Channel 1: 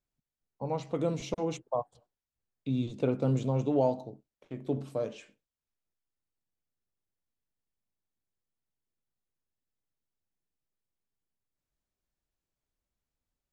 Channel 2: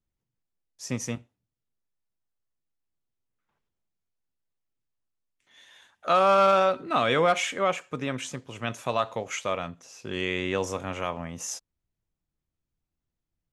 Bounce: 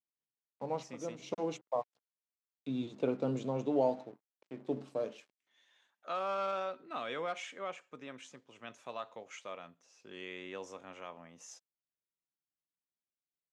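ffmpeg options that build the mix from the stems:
-filter_complex "[0:a]aeval=exprs='sgn(val(0))*max(abs(val(0))-0.0015,0)':c=same,volume=-2.5dB[a];[1:a]volume=-15.5dB,asplit=2[b][c];[c]apad=whole_len=596415[d];[a][d]sidechaincompress=threshold=-50dB:ratio=8:attack=7.9:release=244[e];[e][b]amix=inputs=2:normalize=0,highpass=220,lowpass=7.2k"

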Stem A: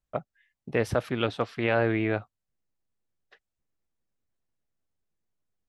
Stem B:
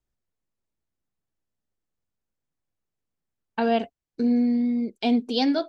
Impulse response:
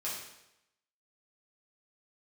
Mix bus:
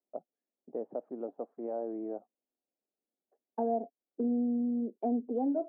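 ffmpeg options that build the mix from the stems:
-filter_complex "[0:a]volume=-10dB[a];[1:a]volume=-2dB[b];[a][b]amix=inputs=2:normalize=0,crystalizer=i=9.5:c=0,asuperpass=centerf=410:order=8:qfactor=0.77,acompressor=threshold=-33dB:ratio=2"

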